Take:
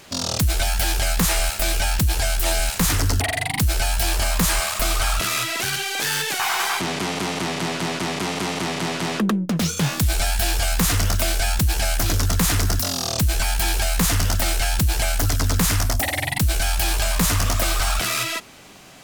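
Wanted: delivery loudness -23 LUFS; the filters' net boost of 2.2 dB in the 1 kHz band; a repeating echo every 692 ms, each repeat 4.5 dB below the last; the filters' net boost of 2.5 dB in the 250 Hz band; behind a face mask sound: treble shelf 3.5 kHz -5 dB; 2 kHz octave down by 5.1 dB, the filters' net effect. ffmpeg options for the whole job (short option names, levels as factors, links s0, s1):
-af "equalizer=f=250:t=o:g=3.5,equalizer=f=1000:t=o:g=5,equalizer=f=2000:t=o:g=-7,highshelf=f=3500:g=-5,aecho=1:1:692|1384|2076|2768|3460|4152|4844|5536|6228:0.596|0.357|0.214|0.129|0.0772|0.0463|0.0278|0.0167|0.01,volume=0.794"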